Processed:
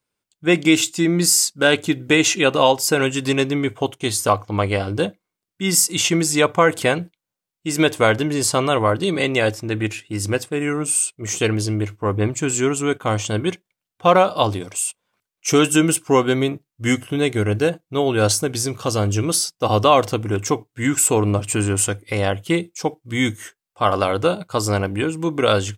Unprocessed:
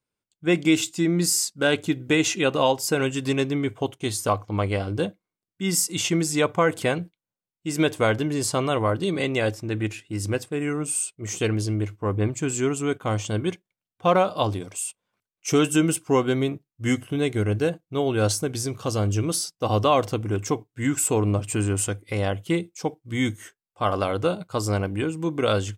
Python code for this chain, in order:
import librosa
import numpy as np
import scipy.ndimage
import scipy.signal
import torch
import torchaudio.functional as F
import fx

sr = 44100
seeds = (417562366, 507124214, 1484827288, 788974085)

y = fx.low_shelf(x, sr, hz=430.0, db=-4.5)
y = y * 10.0 ** (7.0 / 20.0)